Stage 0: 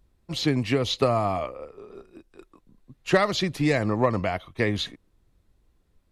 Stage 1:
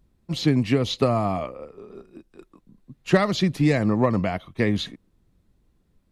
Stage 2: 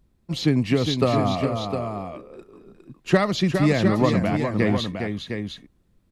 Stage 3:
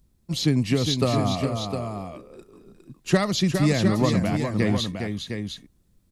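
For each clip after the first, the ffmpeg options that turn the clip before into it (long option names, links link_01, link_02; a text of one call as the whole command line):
ffmpeg -i in.wav -af "equalizer=frequency=190:width_type=o:width=1.4:gain=8,volume=-1dB" out.wav
ffmpeg -i in.wav -af "aecho=1:1:409|708:0.473|0.422" out.wav
ffmpeg -i in.wav -af "bass=frequency=250:gain=4,treble=frequency=4000:gain=11,volume=-3.5dB" out.wav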